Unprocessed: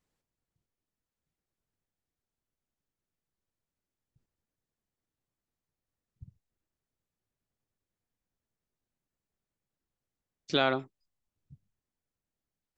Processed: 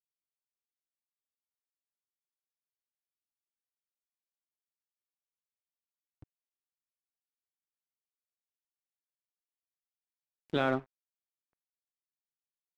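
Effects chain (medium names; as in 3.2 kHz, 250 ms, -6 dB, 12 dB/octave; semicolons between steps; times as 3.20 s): distance through air 250 m; reverberation RT60 0.35 s, pre-delay 7 ms, DRR 10 dB; crossover distortion -42.5 dBFS; upward compressor, threshold -51 dBFS; treble shelf 4 kHz -11 dB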